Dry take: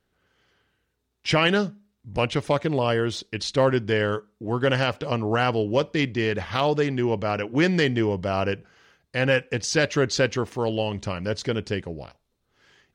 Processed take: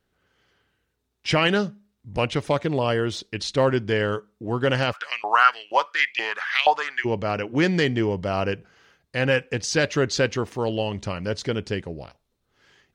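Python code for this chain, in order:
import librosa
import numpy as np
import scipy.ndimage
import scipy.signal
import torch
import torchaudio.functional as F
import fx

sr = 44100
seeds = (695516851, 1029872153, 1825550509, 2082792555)

y = fx.filter_lfo_highpass(x, sr, shape='saw_up', hz=2.1, low_hz=730.0, high_hz=2700.0, q=6.4, at=(4.92, 7.04), fade=0.02)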